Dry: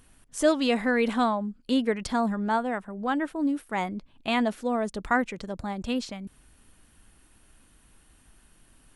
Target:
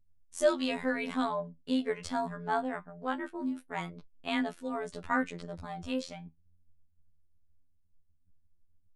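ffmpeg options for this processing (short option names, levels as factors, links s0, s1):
-af "anlmdn=0.0158,afftfilt=real='hypot(re,im)*cos(PI*b)':imag='0':win_size=2048:overlap=0.75,flanger=delay=6.6:depth=7:regen=62:speed=0.25:shape=triangular,volume=1.19"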